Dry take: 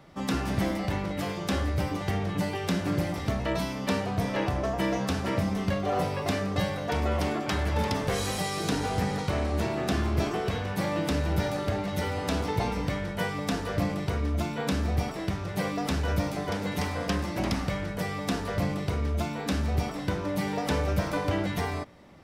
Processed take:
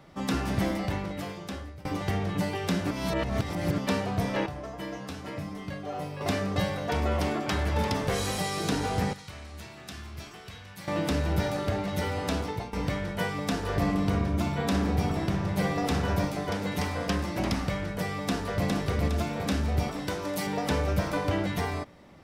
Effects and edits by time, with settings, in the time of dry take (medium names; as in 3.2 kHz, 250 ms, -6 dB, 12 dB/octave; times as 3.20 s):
0.79–1.85 s: fade out, to -23 dB
2.91–3.78 s: reverse
4.46–6.21 s: feedback comb 150 Hz, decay 0.24 s, mix 80%
9.13–10.88 s: amplifier tone stack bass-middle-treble 5-5-5
12.17–12.73 s: fade out equal-power, to -16.5 dB
13.57–16.25 s: filtered feedback delay 62 ms, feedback 78%, level -4 dB
18.20–18.67 s: echo throw 410 ms, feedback 55%, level -3 dB
20.07–20.47 s: tone controls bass -8 dB, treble +7 dB